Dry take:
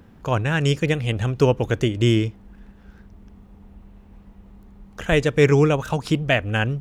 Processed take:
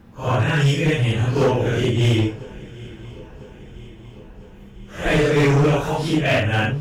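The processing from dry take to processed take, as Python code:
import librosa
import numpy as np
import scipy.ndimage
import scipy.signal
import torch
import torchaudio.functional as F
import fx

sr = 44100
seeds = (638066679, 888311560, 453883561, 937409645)

y = fx.phase_scramble(x, sr, seeds[0], window_ms=200)
y = fx.echo_swing(y, sr, ms=1000, ratio=3, feedback_pct=57, wet_db=-23.0)
y = np.clip(y, -10.0 ** (-15.5 / 20.0), 10.0 ** (-15.5 / 20.0))
y = y * 10.0 ** (3.0 / 20.0)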